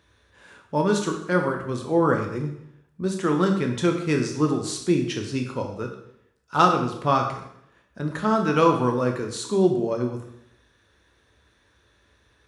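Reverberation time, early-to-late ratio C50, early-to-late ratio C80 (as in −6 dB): 0.70 s, 6.5 dB, 9.0 dB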